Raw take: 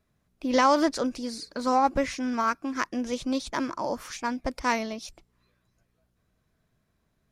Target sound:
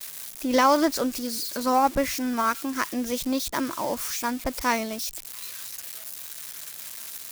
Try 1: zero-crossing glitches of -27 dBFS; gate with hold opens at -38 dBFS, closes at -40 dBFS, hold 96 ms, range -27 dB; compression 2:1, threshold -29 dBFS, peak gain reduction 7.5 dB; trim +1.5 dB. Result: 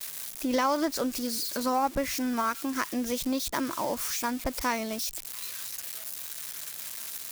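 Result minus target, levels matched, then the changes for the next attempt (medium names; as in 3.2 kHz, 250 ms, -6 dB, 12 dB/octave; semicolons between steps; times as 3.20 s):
compression: peak gain reduction +7.5 dB
remove: compression 2:1, threshold -29 dBFS, peak gain reduction 7.5 dB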